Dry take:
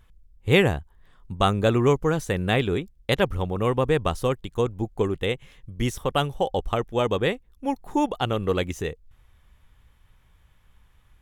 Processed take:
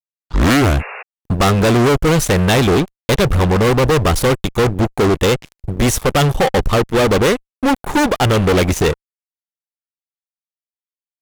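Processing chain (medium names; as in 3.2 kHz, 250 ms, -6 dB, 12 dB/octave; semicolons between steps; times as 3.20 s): tape start-up on the opening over 0.80 s; fuzz box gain 33 dB, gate -42 dBFS; painted sound noise, 0.79–1.03 s, 390–2800 Hz -33 dBFS; trim +2.5 dB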